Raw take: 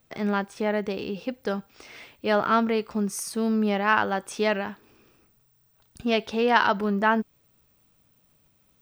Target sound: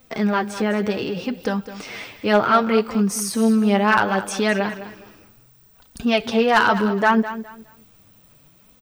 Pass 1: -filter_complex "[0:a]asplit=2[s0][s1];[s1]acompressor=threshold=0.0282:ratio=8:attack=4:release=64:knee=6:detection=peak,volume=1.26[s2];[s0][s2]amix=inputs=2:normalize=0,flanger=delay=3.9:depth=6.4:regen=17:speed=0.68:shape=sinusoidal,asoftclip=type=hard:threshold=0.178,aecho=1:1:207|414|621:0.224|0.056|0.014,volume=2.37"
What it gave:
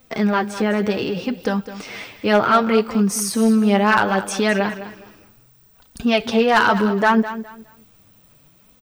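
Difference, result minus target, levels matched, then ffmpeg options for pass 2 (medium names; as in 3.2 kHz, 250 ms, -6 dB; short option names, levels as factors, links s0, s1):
compression: peak gain reduction -7.5 dB
-filter_complex "[0:a]asplit=2[s0][s1];[s1]acompressor=threshold=0.0106:ratio=8:attack=4:release=64:knee=6:detection=peak,volume=1.26[s2];[s0][s2]amix=inputs=2:normalize=0,flanger=delay=3.9:depth=6.4:regen=17:speed=0.68:shape=sinusoidal,asoftclip=type=hard:threshold=0.178,aecho=1:1:207|414|621:0.224|0.056|0.014,volume=2.37"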